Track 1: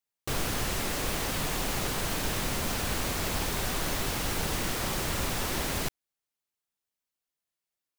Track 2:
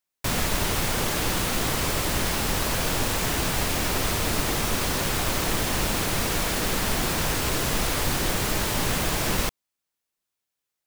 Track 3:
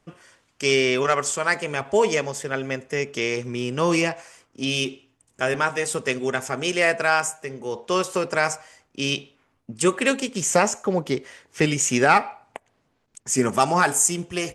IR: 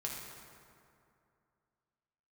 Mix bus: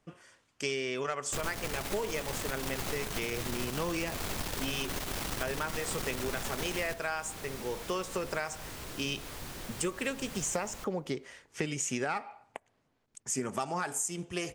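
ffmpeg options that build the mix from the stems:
-filter_complex "[0:a]aeval=exprs='0.158*(cos(1*acos(clip(val(0)/0.158,-1,1)))-cos(1*PI/2))+0.0398*(cos(4*acos(clip(val(0)/0.158,-1,1)))-cos(4*PI/2))':c=same,adelay=1050,volume=0.631[s0];[1:a]adelay=1350,volume=0.119,asplit=2[s1][s2];[s2]volume=0.126[s3];[2:a]volume=0.501[s4];[3:a]atrim=start_sample=2205[s5];[s3][s5]afir=irnorm=-1:irlink=0[s6];[s0][s1][s4][s6]amix=inputs=4:normalize=0,acompressor=threshold=0.0316:ratio=6"

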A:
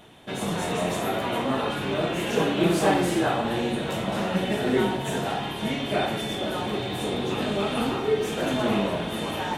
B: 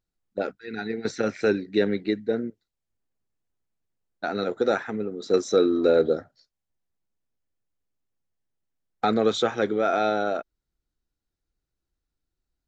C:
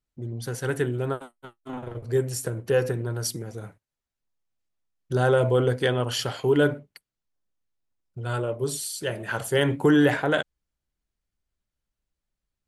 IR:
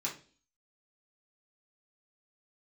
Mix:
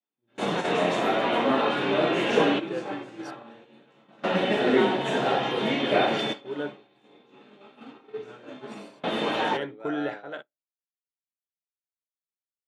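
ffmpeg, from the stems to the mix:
-filter_complex "[0:a]volume=1.41,asplit=2[s0][s1];[s1]volume=0.15[s2];[1:a]lowshelf=f=130:g=-6.5,volume=0.211,asplit=3[s3][s4][s5];[s4]volume=0.237[s6];[2:a]volume=0.282,asplit=2[s7][s8];[s8]volume=0.0631[s9];[s5]apad=whole_len=422461[s10];[s0][s10]sidechaingate=range=0.0224:threshold=0.00141:ratio=16:detection=peak[s11];[3:a]atrim=start_sample=2205[s12];[s2][s6][s9]amix=inputs=3:normalize=0[s13];[s13][s12]afir=irnorm=-1:irlink=0[s14];[s11][s3][s7][s14]amix=inputs=4:normalize=0,agate=range=0.0224:threshold=0.0447:ratio=3:detection=peak,highpass=230,lowpass=4000"

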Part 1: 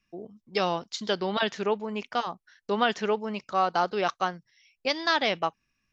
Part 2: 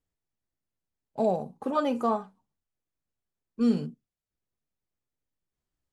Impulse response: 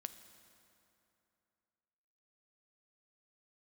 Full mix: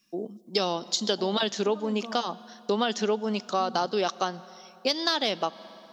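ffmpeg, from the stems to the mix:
-filter_complex "[0:a]aexciter=amount=3.7:drive=6.5:freq=3200,highpass=220,equalizer=f=420:w=0.34:g=5,volume=0.708,asplit=2[s0][s1];[s1]volume=0.596[s2];[1:a]acompressor=threshold=0.0316:ratio=6,volume=0.355[s3];[2:a]atrim=start_sample=2205[s4];[s2][s4]afir=irnorm=-1:irlink=0[s5];[s0][s3][s5]amix=inputs=3:normalize=0,equalizer=f=200:t=o:w=1.8:g=6.5,acompressor=threshold=0.0631:ratio=3"

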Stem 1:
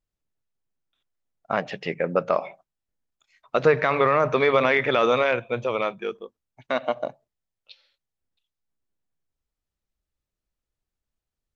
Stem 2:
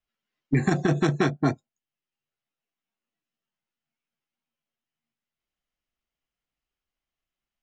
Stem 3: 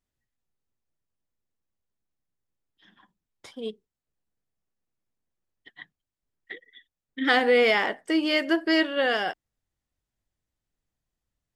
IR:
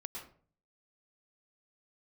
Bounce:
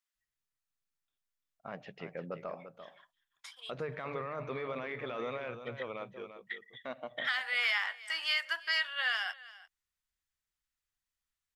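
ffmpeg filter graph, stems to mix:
-filter_complex "[0:a]bass=f=250:g=4,treble=f=4000:g=-5,alimiter=limit=0.211:level=0:latency=1:release=16,adelay=150,volume=0.158,asplit=2[s0][s1];[s1]volume=0.316[s2];[2:a]highpass=f=1100:w=0.5412,highpass=f=1100:w=1.3066,volume=0.891,asplit=2[s3][s4];[s4]volume=0.0841[s5];[s2][s5]amix=inputs=2:normalize=0,aecho=0:1:343:1[s6];[s0][s3][s6]amix=inputs=3:normalize=0,alimiter=limit=0.0944:level=0:latency=1:release=493"

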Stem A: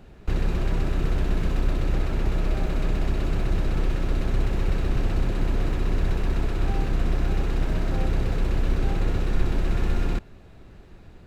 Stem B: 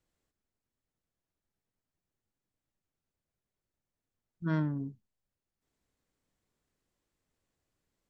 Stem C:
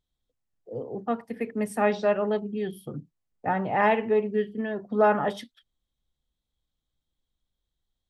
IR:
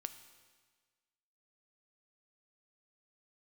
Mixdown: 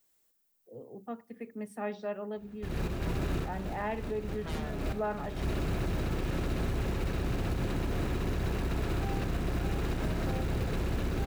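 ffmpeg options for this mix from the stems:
-filter_complex "[0:a]highpass=55,acrusher=bits=6:mode=log:mix=0:aa=0.000001,adelay=2350,volume=1.12,asplit=2[s0][s1];[s1]volume=0.0668[s2];[1:a]aemphasis=mode=production:type=bsi,aeval=exprs='0.0891*sin(PI/2*7.94*val(0)/0.0891)':c=same,volume=0.119[s3];[2:a]equalizer=f=240:t=o:w=1.5:g=3,volume=0.188,asplit=3[s4][s5][s6];[s5]volume=0.168[s7];[s6]apad=whole_len=600363[s8];[s0][s8]sidechaincompress=threshold=0.00251:ratio=10:attack=11:release=170[s9];[3:a]atrim=start_sample=2205[s10];[s2][s7]amix=inputs=2:normalize=0[s11];[s11][s10]afir=irnorm=-1:irlink=0[s12];[s9][s3][s4][s12]amix=inputs=4:normalize=0,alimiter=limit=0.0668:level=0:latency=1:release=75"

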